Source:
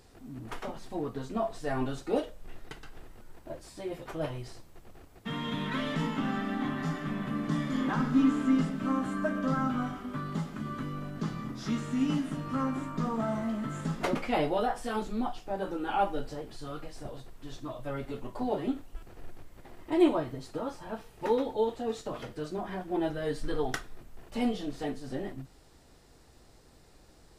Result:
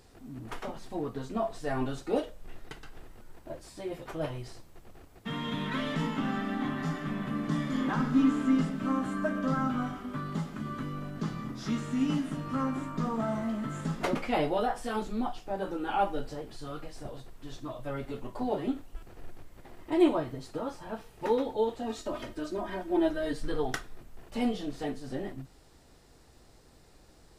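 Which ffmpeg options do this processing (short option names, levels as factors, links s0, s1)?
-filter_complex "[0:a]asettb=1/sr,asplit=3[s0][s1][s2];[s0]atrim=end=21.824[s3];[s1]atrim=start=21.82:end=23.33,asetpts=PTS-STARTPTS,afade=t=in:d=0.004:c=qsin,afade=t=out:st=1.506:d=0.004:c=qsin,aecho=1:1:3.2:0.72,atrim=end_sample=66591[s4];[s2]atrim=start=23.326[s5];[s3][s4]acrossfade=d=0.004:c1=hsin:c2=qsin[s6];[s6][s5]acrossfade=d=0.004:c1=qsin:c2=hsin"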